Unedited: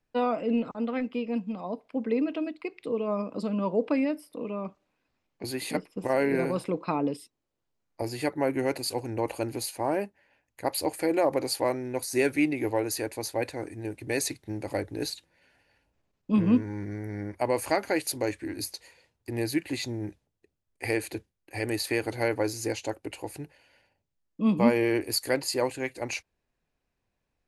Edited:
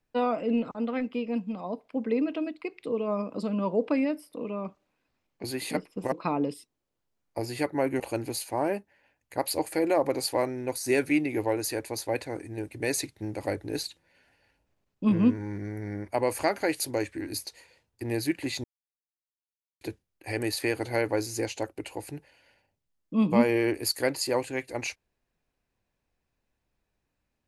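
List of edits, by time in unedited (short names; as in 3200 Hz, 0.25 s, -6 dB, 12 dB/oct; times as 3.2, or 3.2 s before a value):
6.12–6.75 cut
8.63–9.27 cut
19.91–21.08 mute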